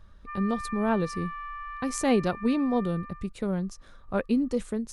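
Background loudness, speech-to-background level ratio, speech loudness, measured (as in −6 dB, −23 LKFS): −39.5 LKFS, 11.0 dB, −28.5 LKFS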